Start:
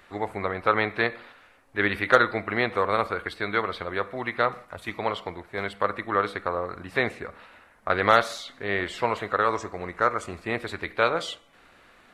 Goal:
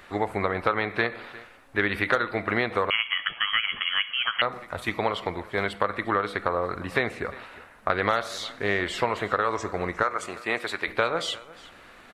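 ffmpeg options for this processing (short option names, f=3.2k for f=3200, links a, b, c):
-filter_complex "[0:a]asettb=1/sr,asplit=3[a][b][c];[a]atrim=end=10.034[d];[b]atrim=start=10.03:end=10.88,asetpts=PTS-STARTPTS,afade=t=in:d=0.004:c=qsin,afade=t=out:st=0.846:d=0.004:c=qsin,highpass=f=610:p=1[e];[c]atrim=start=10.876[f];[d][e]acrossfade=d=0.004:c1=hsin:c2=qsin[g];[g][f]acrossfade=d=0.004:c1=qsin:c2=hsin,acompressor=threshold=-26dB:ratio=5,asplit=2[h][i];[i]aecho=0:1:354:0.1[j];[h][j]amix=inputs=2:normalize=0,asettb=1/sr,asplit=3[k][l][m];[k]atrim=end=2.904[n];[l]atrim=start=2.9:end=4.42,asetpts=PTS-STARTPTS,afade=t=in:d=0.004:c=qsin,afade=t=out:st=1.516:d=0.004:c=qsin,lowpass=f=2.9k:t=q:w=0.5098,lowpass=f=2.9k:t=q:w=0.6013,lowpass=f=2.9k:t=q:w=0.9,lowpass=f=2.9k:t=q:w=2.563,afreqshift=-3400[o];[m]atrim=start=4.416[p];[n][o]acrossfade=d=0.004:c1=hsin:c2=qsin[q];[q][p]acrossfade=d=0.004:c1=qsin:c2=hsin,volume=5.5dB"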